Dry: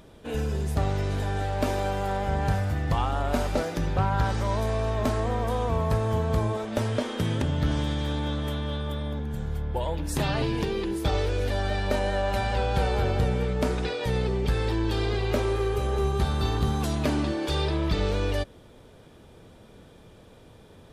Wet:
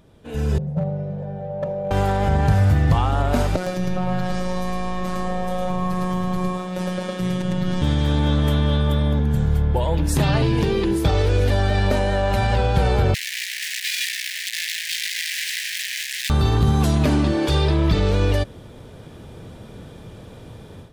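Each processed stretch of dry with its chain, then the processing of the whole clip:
0:00.58–0:01.91: pair of resonant band-passes 300 Hz, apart 1.7 octaves + comb filter 5.5 ms, depth 50% + hard clipping −27.5 dBFS
0:03.56–0:07.82: phases set to zero 182 Hz + single-tap delay 106 ms −5 dB
0:13.14–0:16.30: sign of each sample alone + Butterworth high-pass 1,700 Hz 96 dB per octave + high-shelf EQ 8,700 Hz −6 dB
whole clip: automatic gain control gain up to 13.5 dB; brickwall limiter −7.5 dBFS; parametric band 120 Hz +6 dB 1.7 octaves; level −5 dB

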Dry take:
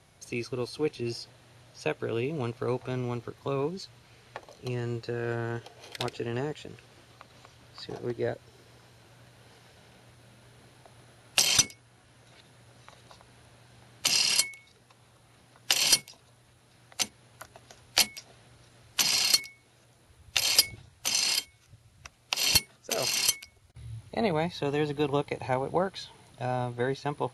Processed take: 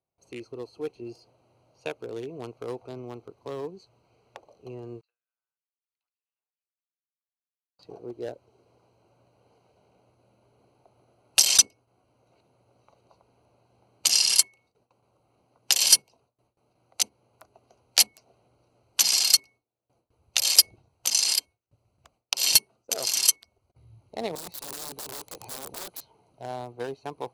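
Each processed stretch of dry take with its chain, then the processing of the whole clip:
0:05.01–0:07.79: four-pole ladder band-pass 2,000 Hz, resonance 25% + first difference
0:24.35–0:26.01: high-shelf EQ 3,700 Hz +12 dB + wrap-around overflow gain 28.5 dB
whole clip: adaptive Wiener filter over 25 samples; noise gate with hold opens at −53 dBFS; bass and treble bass −10 dB, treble +10 dB; level −2 dB

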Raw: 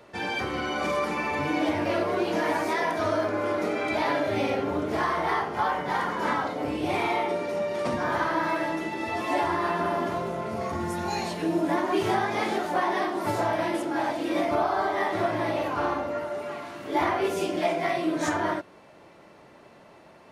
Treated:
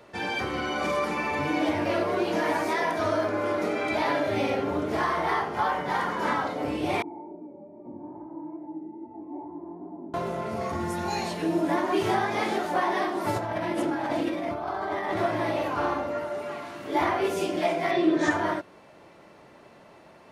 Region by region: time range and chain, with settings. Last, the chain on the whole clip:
0:07.02–0:10.14: chorus effect 2.4 Hz, delay 16 ms, depth 7.7 ms + formant resonators in series u
0:13.36–0:15.17: compressor whose output falls as the input rises −30 dBFS + bass and treble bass +5 dB, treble −4 dB
0:17.91–0:18.31: low-pass filter 5,900 Hz + hollow resonant body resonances 370/1,800/3,500 Hz, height 11 dB
whole clip: no processing

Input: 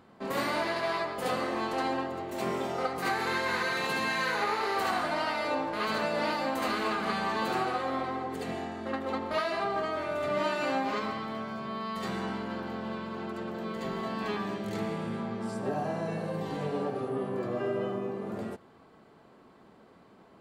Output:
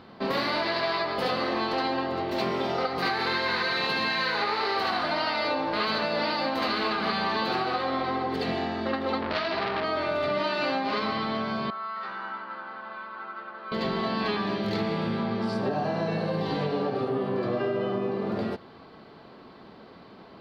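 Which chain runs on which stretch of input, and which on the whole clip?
0:09.21–0:09.84: low-pass filter 5,600 Hz 24 dB per octave + low-shelf EQ 390 Hz +8.5 dB + saturating transformer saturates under 2,100 Hz
0:11.70–0:13.72: resonant band-pass 1,300 Hz, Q 3.7 + double-tracking delay 15 ms −5 dB
whole clip: high shelf with overshoot 5,900 Hz −10 dB, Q 3; downward compressor, threshold −32 dBFS; level +8 dB

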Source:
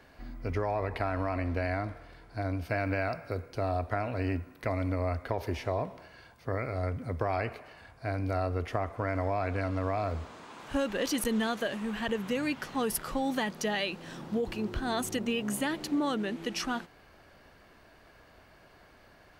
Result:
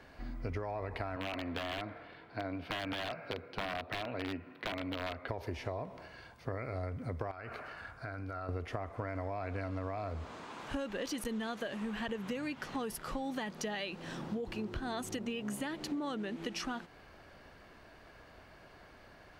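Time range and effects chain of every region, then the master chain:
0:01.16–0:05.28: high-pass filter 160 Hz + wrap-around overflow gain 24.5 dB + high shelf with overshoot 4,800 Hz −11.5 dB, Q 1.5
0:07.31–0:08.49: parametric band 1,400 Hz +12.5 dB 0.42 octaves + downward compressor, threshold −39 dBFS
whole clip: downward compressor, threshold −36 dBFS; high-shelf EQ 10,000 Hz −8.5 dB; level +1 dB

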